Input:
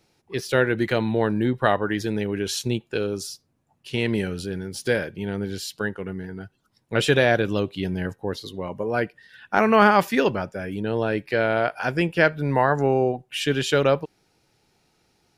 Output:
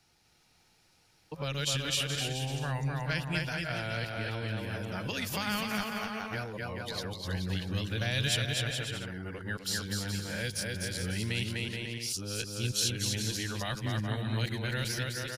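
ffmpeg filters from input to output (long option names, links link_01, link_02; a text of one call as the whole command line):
ffmpeg -i in.wav -filter_complex "[0:a]areverse,aecho=1:1:250|425|547.5|633.2|693.3:0.631|0.398|0.251|0.158|0.1,acrossover=split=170|3000[link_01][link_02][link_03];[link_02]acompressor=threshold=-31dB:ratio=10[link_04];[link_01][link_04][link_03]amix=inputs=3:normalize=0,equalizer=frequency=320:width=0.42:gain=-8,bandreject=frequency=400:width=12" out.wav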